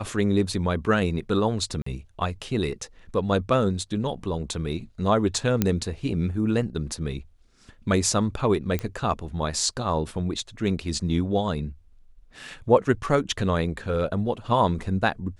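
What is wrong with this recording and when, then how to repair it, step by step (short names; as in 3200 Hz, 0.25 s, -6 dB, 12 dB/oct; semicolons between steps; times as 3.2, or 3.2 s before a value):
1.82–1.86 gap 44 ms
5.62 pop -7 dBFS
8.79 pop -14 dBFS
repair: de-click; interpolate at 1.82, 44 ms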